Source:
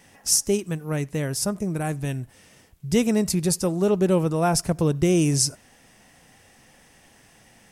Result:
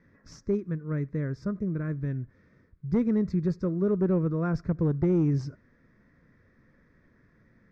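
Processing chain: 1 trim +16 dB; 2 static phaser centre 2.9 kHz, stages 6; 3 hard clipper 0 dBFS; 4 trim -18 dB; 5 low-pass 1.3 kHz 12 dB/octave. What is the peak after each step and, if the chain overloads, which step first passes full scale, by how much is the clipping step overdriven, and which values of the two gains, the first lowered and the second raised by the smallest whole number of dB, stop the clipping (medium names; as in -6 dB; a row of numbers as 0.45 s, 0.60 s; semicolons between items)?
+9.0 dBFS, +6.0 dBFS, 0.0 dBFS, -18.0 dBFS, -18.0 dBFS; step 1, 6.0 dB; step 1 +10 dB, step 4 -12 dB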